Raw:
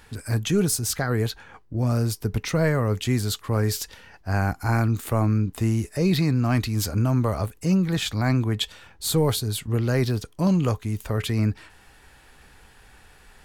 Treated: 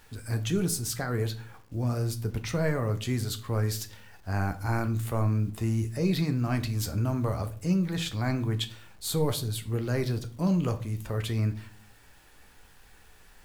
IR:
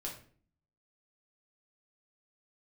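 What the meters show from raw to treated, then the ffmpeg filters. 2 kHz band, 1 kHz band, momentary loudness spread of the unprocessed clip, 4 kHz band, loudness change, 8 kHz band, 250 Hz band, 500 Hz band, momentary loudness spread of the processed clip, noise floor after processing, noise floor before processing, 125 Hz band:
−6.0 dB, −5.5 dB, 6 LU, −6.0 dB, −5.5 dB, −6.0 dB, −5.5 dB, −5.5 dB, 6 LU, −55 dBFS, −53 dBFS, −5.0 dB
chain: -filter_complex "[0:a]acrusher=bits=8:mix=0:aa=0.000001,asplit=2[link_01][link_02];[1:a]atrim=start_sample=2205,adelay=11[link_03];[link_02][link_03]afir=irnorm=-1:irlink=0,volume=-7.5dB[link_04];[link_01][link_04]amix=inputs=2:normalize=0,volume=-6.5dB"

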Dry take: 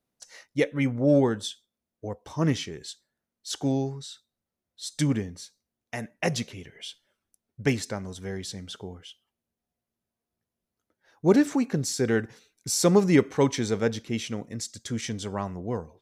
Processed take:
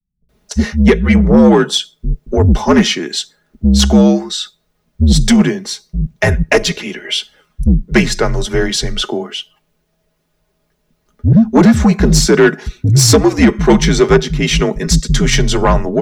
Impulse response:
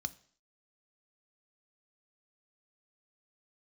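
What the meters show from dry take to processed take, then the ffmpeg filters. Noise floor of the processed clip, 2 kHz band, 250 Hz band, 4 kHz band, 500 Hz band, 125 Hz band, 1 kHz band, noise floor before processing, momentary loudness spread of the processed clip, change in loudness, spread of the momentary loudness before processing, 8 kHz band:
−65 dBFS, +17.0 dB, +15.5 dB, +19.0 dB, +13.0 dB, +17.0 dB, +16.0 dB, below −85 dBFS, 13 LU, +14.5 dB, 19 LU, +15.0 dB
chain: -filter_complex "[0:a]equalizer=frequency=11000:width=0.6:gain=-8,afreqshift=-67,aecho=1:1:4.8:0.51,acrossover=split=180[link_01][link_02];[link_02]adelay=290[link_03];[link_01][link_03]amix=inputs=2:normalize=0,alimiter=limit=-15dB:level=0:latency=1:release=456,dynaudnorm=framelen=140:gausssize=3:maxgain=16.5dB,asoftclip=type=tanh:threshold=-8dB,volume=6.5dB"

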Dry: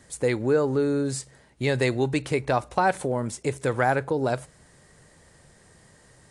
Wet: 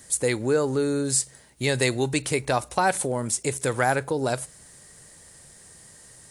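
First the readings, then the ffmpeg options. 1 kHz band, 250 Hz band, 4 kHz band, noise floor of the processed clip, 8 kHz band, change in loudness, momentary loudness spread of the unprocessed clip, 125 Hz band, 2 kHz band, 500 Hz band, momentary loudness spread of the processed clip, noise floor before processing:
0.0 dB, −1.0 dB, +6.0 dB, −51 dBFS, +12.0 dB, +0.5 dB, 7 LU, −1.0 dB, +1.5 dB, −0.5 dB, 5 LU, −57 dBFS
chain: -af "aemphasis=mode=production:type=75fm"

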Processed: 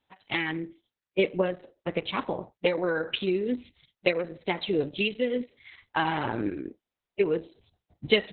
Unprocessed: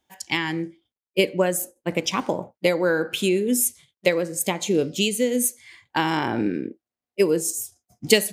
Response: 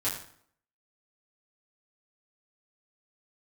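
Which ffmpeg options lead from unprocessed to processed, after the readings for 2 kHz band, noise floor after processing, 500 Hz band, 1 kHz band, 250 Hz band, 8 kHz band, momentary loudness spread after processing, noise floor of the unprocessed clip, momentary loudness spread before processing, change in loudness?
−4.0 dB, below −85 dBFS, −5.0 dB, −4.0 dB, −6.5 dB, below −40 dB, 10 LU, below −85 dBFS, 9 LU, −6.0 dB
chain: -filter_complex "[0:a]asubboost=boost=5:cutoff=80,acrossover=split=5100[link_01][link_02];[link_02]acompressor=threshold=-30dB:ratio=4:attack=1:release=60[link_03];[link_01][link_03]amix=inputs=2:normalize=0,volume=-3.5dB" -ar 48000 -c:a libopus -b:a 6k

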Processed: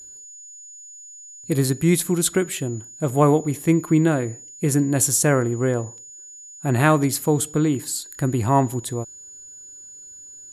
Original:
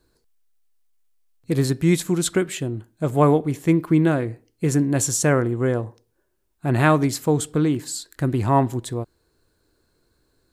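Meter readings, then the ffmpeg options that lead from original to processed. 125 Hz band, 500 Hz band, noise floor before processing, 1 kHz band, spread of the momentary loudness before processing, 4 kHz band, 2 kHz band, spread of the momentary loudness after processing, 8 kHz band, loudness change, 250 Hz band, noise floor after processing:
0.0 dB, 0.0 dB, −69 dBFS, 0.0 dB, 12 LU, +0.5 dB, 0.0 dB, 21 LU, +4.5 dB, +0.5 dB, 0.0 dB, −42 dBFS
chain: -af "aeval=exprs='val(0)+0.00891*sin(2*PI*6900*n/s)':channel_layout=same,equalizer=frequency=11000:width=1.9:gain=11.5"

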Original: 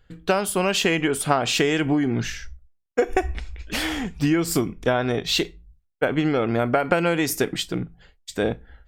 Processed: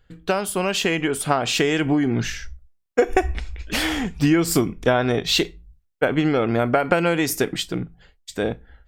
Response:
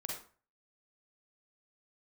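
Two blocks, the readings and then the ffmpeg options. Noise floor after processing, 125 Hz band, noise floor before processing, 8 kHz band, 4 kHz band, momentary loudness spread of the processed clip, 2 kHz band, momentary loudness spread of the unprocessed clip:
−65 dBFS, +2.0 dB, −65 dBFS, +1.0 dB, +1.5 dB, 9 LU, +1.5 dB, 11 LU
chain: -af "dynaudnorm=framelen=750:gausssize=5:maxgain=11.5dB,volume=-1dB"

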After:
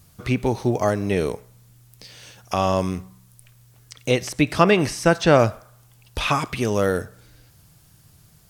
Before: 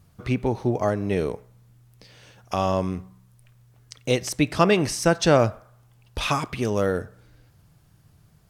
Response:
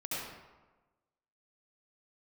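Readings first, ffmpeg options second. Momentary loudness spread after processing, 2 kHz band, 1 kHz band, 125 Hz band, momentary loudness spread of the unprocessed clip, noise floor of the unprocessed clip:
12 LU, +4.0 dB, +3.0 dB, +2.0 dB, 12 LU, −58 dBFS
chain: -filter_complex "[0:a]acrossover=split=2900[link_01][link_02];[link_02]acompressor=threshold=-44dB:ratio=4:attack=1:release=60[link_03];[link_01][link_03]amix=inputs=2:normalize=0,highshelf=frequency=3200:gain=11.5,volume=2dB"

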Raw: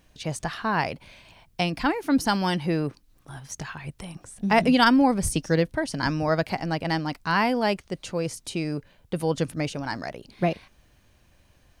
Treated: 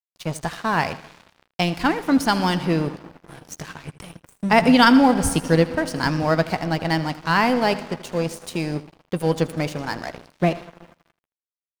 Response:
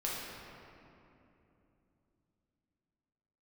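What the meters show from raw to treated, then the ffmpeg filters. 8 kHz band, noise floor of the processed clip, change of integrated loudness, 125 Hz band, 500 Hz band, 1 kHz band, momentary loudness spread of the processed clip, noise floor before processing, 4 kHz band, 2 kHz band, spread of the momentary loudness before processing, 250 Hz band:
+2.5 dB, below −85 dBFS, +4.5 dB, +4.0 dB, +4.0 dB, +4.0 dB, 20 LU, −61 dBFS, +4.0 dB, +4.0 dB, 17 LU, +4.5 dB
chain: -filter_complex "[0:a]asplit=2[link_01][link_02];[1:a]atrim=start_sample=2205,adelay=119[link_03];[link_02][link_03]afir=irnorm=-1:irlink=0,volume=-17.5dB[link_04];[link_01][link_04]amix=inputs=2:normalize=0,aeval=exprs='sgn(val(0))*max(abs(val(0))-0.0119,0)':channel_layout=same,aecho=1:1:12|80:0.178|0.15,volume=4.5dB"

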